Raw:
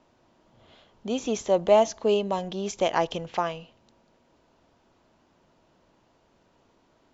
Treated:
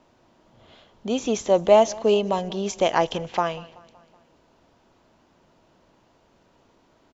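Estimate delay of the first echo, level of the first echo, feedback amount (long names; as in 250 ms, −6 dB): 189 ms, −22.0 dB, 55%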